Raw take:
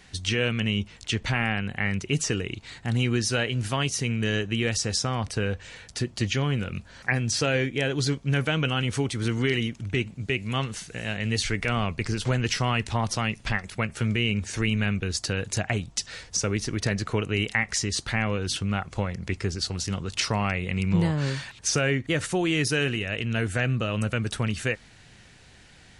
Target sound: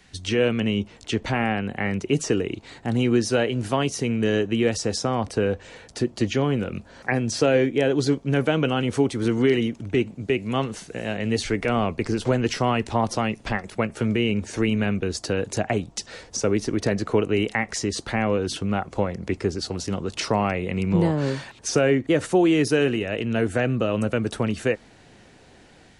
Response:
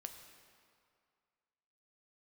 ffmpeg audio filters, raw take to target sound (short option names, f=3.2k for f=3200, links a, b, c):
-filter_complex "[0:a]equalizer=f=260:t=o:w=1:g=2.5,acrossover=split=260|930[a][b][c];[b]dynaudnorm=f=170:g=3:m=11dB[d];[a][d][c]amix=inputs=3:normalize=0,volume=-2.5dB"